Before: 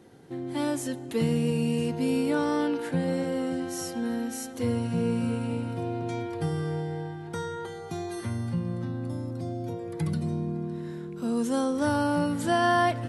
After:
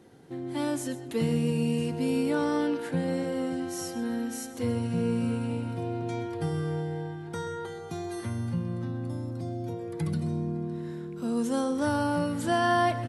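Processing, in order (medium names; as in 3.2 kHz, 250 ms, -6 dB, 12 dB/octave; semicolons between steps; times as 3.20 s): delay 129 ms -15.5 dB; trim -1.5 dB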